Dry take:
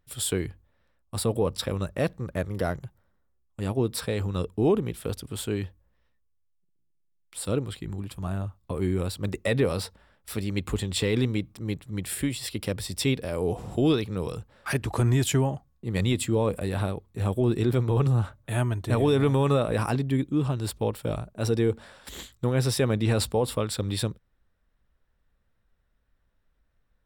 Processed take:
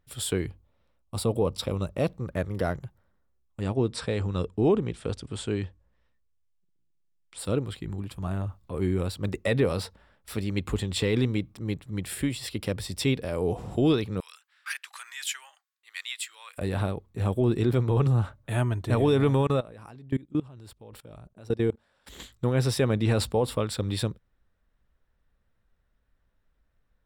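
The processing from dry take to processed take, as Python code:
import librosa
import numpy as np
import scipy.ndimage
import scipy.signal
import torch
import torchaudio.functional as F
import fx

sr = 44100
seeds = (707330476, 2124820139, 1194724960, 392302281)

y = fx.peak_eq(x, sr, hz=1700.0, db=-11.0, octaves=0.34, at=(0.48, 2.26))
y = fx.steep_lowpass(y, sr, hz=9200.0, slope=48, at=(3.61, 7.39))
y = fx.transient(y, sr, attack_db=-7, sustain_db=6, at=(8.31, 8.74))
y = fx.highpass(y, sr, hz=1500.0, slope=24, at=(14.2, 16.58))
y = fx.level_steps(y, sr, step_db=23, at=(19.41, 22.2))
y = fx.high_shelf(y, sr, hz=6500.0, db=-5.5)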